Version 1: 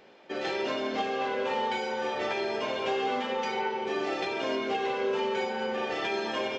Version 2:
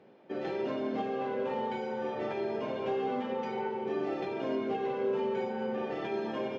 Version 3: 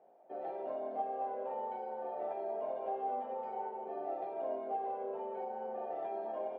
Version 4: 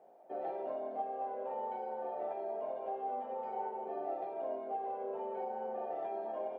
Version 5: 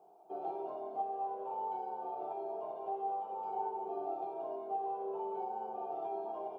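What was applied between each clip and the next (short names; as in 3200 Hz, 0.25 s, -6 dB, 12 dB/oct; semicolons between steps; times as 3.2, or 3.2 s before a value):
HPF 110 Hz 24 dB/oct; tilt -4 dB/oct; gain -6.5 dB
band-pass 700 Hz, Q 6.6; gain +6 dB
vocal rider within 3 dB 0.5 s
fixed phaser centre 370 Hz, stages 8; gain +2.5 dB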